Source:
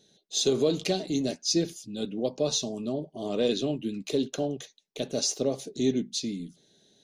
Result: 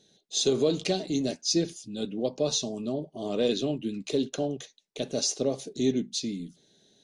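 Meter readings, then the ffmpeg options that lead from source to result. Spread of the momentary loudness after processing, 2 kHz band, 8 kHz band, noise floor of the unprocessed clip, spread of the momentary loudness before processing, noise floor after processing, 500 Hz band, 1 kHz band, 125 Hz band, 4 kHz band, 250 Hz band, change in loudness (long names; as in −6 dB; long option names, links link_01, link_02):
9 LU, 0.0 dB, 0.0 dB, −66 dBFS, 9 LU, −67 dBFS, 0.0 dB, 0.0 dB, 0.0 dB, 0.0 dB, 0.0 dB, 0.0 dB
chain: -ar 22050 -c:a aac -b:a 96k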